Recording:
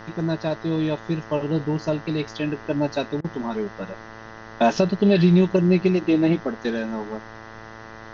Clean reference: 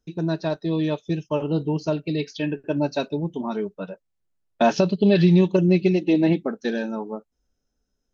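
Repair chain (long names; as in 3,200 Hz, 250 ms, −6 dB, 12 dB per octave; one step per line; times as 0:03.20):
hum removal 111.2 Hz, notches 18
repair the gap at 0:03.21, 32 ms
downward expander −33 dBFS, range −21 dB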